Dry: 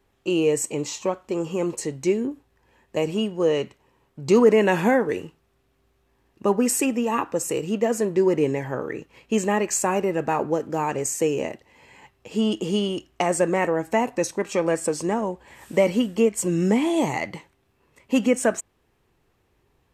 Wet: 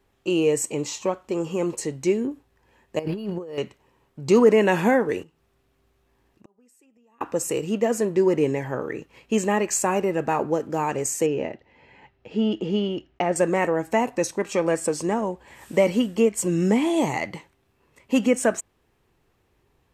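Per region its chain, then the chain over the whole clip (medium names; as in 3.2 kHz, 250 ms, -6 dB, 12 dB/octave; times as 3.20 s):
2.99–3.58 s: treble shelf 3.3 kHz -5 dB + compressor with a negative ratio -31 dBFS + decimation joined by straight lines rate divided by 6×
5.23–7.21 s: inverted gate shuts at -18 dBFS, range -33 dB + compression 2:1, threshold -59 dBFS
11.26–13.36 s: block-companded coder 7-bit + distance through air 220 m + band-stop 1.1 kHz, Q 6.5
whole clip: none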